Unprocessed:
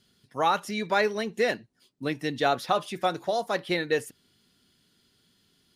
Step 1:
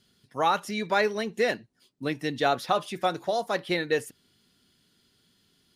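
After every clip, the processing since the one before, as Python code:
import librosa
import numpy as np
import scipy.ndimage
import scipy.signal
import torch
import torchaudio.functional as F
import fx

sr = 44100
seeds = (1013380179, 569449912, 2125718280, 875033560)

y = x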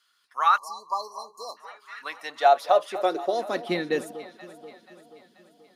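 y = fx.filter_sweep_highpass(x, sr, from_hz=1200.0, to_hz=220.0, start_s=1.93, end_s=3.74, q=4.0)
y = fx.echo_alternate(y, sr, ms=241, hz=1100.0, feedback_pct=71, wet_db=-13.0)
y = fx.spec_erase(y, sr, start_s=0.58, length_s=0.99, low_hz=1200.0, high_hz=4000.0)
y = F.gain(torch.from_numpy(y), -2.5).numpy()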